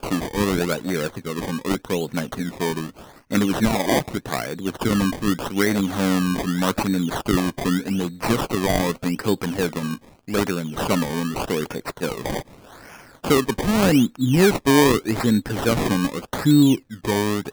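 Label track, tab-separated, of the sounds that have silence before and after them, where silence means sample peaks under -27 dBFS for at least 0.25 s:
3.320000	9.950000	sound
10.280000	12.400000	sound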